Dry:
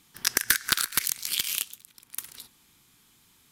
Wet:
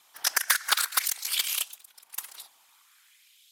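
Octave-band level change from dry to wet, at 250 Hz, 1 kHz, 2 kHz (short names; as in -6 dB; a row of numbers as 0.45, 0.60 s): under -15 dB, +4.5 dB, 0.0 dB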